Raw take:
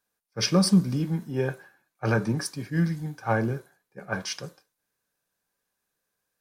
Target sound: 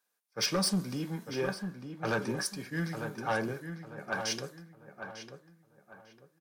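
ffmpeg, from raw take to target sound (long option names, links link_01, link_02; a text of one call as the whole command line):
ffmpeg -i in.wav -filter_complex "[0:a]highpass=frequency=500:poles=1,asoftclip=type=tanh:threshold=-23dB,asplit=2[link_01][link_02];[link_02]adelay=899,lowpass=frequency=2300:poles=1,volume=-7.5dB,asplit=2[link_03][link_04];[link_04]adelay=899,lowpass=frequency=2300:poles=1,volume=0.33,asplit=2[link_05][link_06];[link_06]adelay=899,lowpass=frequency=2300:poles=1,volume=0.33,asplit=2[link_07][link_08];[link_08]adelay=899,lowpass=frequency=2300:poles=1,volume=0.33[link_09];[link_01][link_03][link_05][link_07][link_09]amix=inputs=5:normalize=0" out.wav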